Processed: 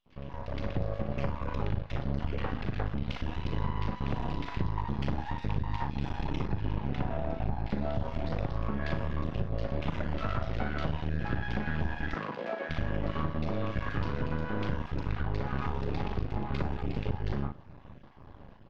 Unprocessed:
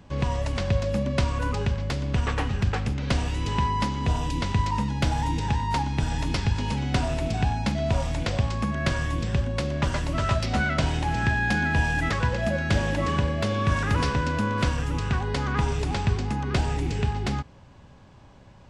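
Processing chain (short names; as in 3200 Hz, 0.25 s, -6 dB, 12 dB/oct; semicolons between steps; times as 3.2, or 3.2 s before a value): random spectral dropouts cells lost 20%; doubler 38 ms -6.5 dB; bands offset in time highs, lows 60 ms, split 1900 Hz; compressor 5:1, threshold -29 dBFS, peak gain reduction 12 dB; half-wave rectifier; air absorption 290 m; reverb, pre-delay 47 ms, DRR 15 dB; AGC gain up to 11.5 dB; 6.46–7.7 high shelf 4100 Hz -10.5 dB; 12.14–12.69 HPF 150 Hz -> 340 Hz 24 dB/oct; gain -7 dB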